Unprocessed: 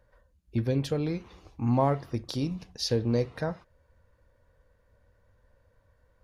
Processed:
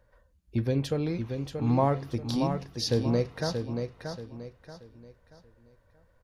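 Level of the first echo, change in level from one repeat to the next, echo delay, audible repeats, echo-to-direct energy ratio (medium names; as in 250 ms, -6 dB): -6.5 dB, -9.5 dB, 631 ms, 4, -6.0 dB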